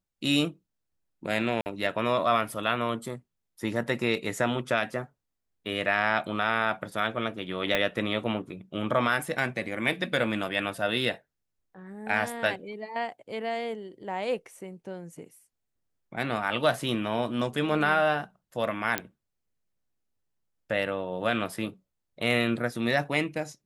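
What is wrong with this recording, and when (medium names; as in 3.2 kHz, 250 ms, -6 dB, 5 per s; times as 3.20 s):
1.61–1.66 s: dropout 49 ms
7.75 s: pop -11 dBFS
18.98 s: pop -9 dBFS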